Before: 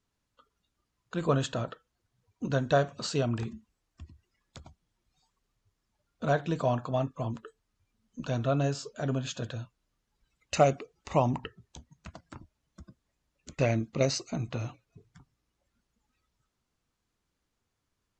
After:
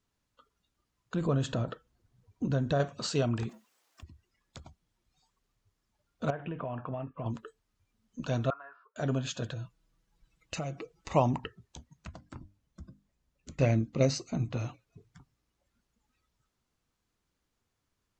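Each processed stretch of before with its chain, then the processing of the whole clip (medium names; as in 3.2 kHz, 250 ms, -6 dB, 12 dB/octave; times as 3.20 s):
1.14–2.80 s: bass shelf 490 Hz +9.5 dB + compression 2:1, threshold -31 dBFS
3.49–4.03 s: companding laws mixed up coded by mu + high-pass 490 Hz
6.30–7.26 s: elliptic low-pass 2.9 kHz + compression 12:1, threshold -32 dBFS
8.50–8.96 s: Butterworth band-pass 1.3 kHz, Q 2 + distance through air 390 m + comb 2.9 ms, depth 35%
9.52–11.09 s: bass shelf 240 Hz +6 dB + comb 6.1 ms, depth 60% + compression 4:1, threshold -35 dBFS
12.07–14.57 s: bass shelf 320 Hz +8 dB + hum notches 50/100/150/200/250/300 Hz + feedback comb 260 Hz, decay 0.16 s, mix 40%
whole clip: none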